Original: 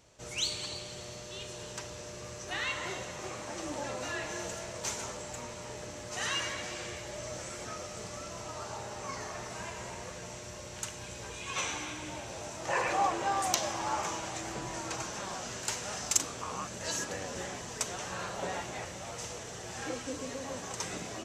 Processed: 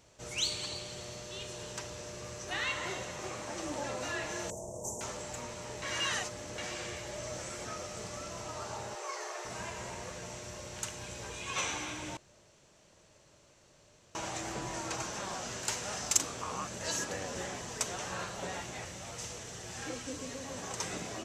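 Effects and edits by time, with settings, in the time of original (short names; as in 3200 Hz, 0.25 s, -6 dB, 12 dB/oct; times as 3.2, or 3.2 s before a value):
4.5–5.01 inverse Chebyshev band-stop 1400–4300 Hz
5.82–6.58 reverse
8.95–9.45 brick-wall FIR high-pass 320 Hz
12.17–14.15 room tone
18.24–20.58 bell 700 Hz -4.5 dB 2.6 oct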